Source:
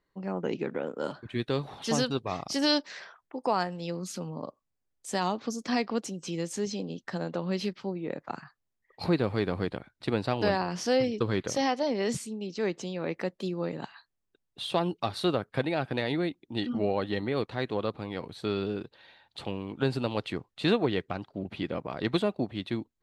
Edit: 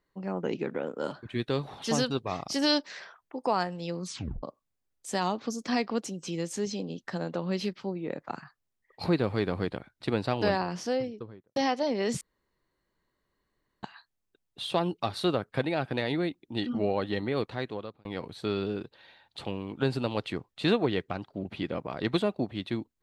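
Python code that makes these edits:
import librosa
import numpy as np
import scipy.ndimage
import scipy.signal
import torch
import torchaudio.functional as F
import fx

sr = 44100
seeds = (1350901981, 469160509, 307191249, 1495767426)

y = fx.studio_fade_out(x, sr, start_s=10.53, length_s=1.03)
y = fx.edit(y, sr, fx.tape_stop(start_s=4.05, length_s=0.38),
    fx.room_tone_fill(start_s=12.21, length_s=1.62),
    fx.fade_out_span(start_s=17.49, length_s=0.56), tone=tone)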